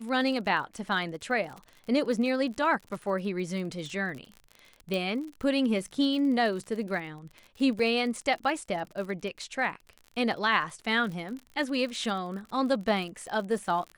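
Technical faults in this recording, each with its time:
crackle 46 per s -36 dBFS
4.94 s: pop -18 dBFS
7.79 s: dropout 4.5 ms

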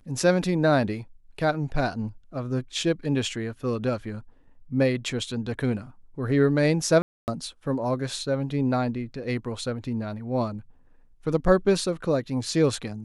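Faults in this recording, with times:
7.02–7.28 s: dropout 259 ms

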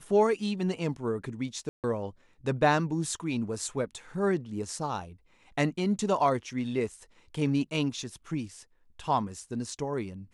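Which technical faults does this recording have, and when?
1.69–1.84 s: dropout 148 ms

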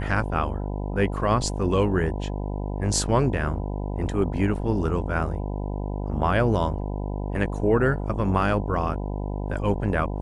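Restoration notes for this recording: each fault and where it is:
buzz 50 Hz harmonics 20 -29 dBFS

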